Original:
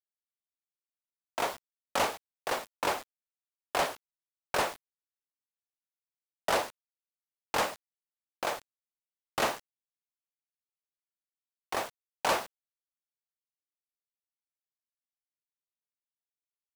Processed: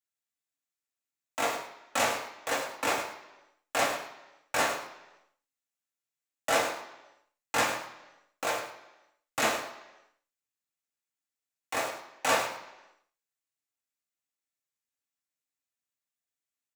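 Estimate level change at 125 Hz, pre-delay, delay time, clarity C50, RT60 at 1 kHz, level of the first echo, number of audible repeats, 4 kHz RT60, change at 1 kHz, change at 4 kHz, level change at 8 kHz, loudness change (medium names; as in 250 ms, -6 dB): +0.5 dB, 3 ms, 106 ms, 6.5 dB, 0.95 s, -10.0 dB, 1, 0.90 s, +1.5 dB, +2.5 dB, +5.5 dB, +2.5 dB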